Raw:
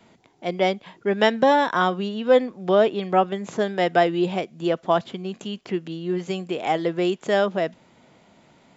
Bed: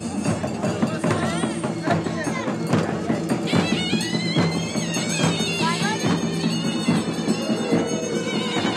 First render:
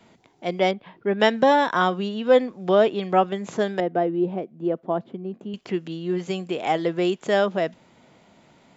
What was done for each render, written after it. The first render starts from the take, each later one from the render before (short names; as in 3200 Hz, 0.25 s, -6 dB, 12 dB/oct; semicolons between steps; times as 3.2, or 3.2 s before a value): 0.71–1.2 air absorption 290 m; 3.8–5.54 band-pass 290 Hz, Q 0.78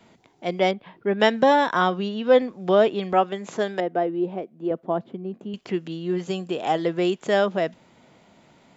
1.81–2.42 steep low-pass 6800 Hz 72 dB/oct; 3.13–4.71 HPF 260 Hz 6 dB/oct; 6.24–6.78 notch 2200 Hz, Q 5.7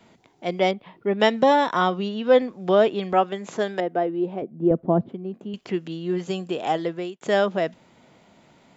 0.62–2.06 notch 1600 Hz, Q 8.1; 4.42–5.09 tilt -4.5 dB/oct; 6.54–7.21 fade out equal-power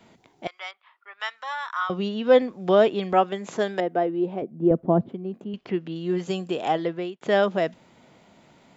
0.47–1.9 ladder high-pass 1100 Hz, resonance 55%; 5.44–5.96 air absorption 180 m; 6.68–7.43 LPF 4500 Hz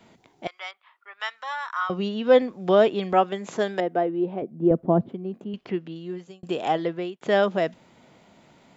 1.56–2.03 notch 3500 Hz, Q 9.8; 4.01–4.45 air absorption 120 m; 5.63–6.43 fade out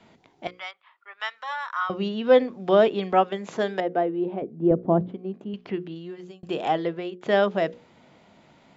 LPF 5800 Hz 12 dB/oct; notches 60/120/180/240/300/360/420/480/540 Hz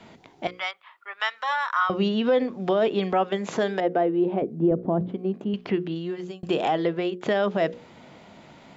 in parallel at +1.5 dB: compressor, threshold -29 dBFS, peak gain reduction 16 dB; on the sum: limiter -13 dBFS, peak gain reduction 8.5 dB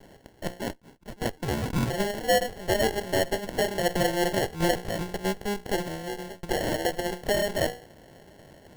minimum comb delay 1.9 ms; sample-and-hold 36×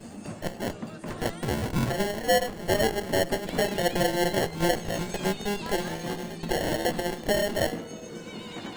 add bed -15.5 dB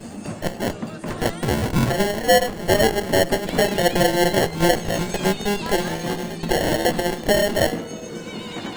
gain +7 dB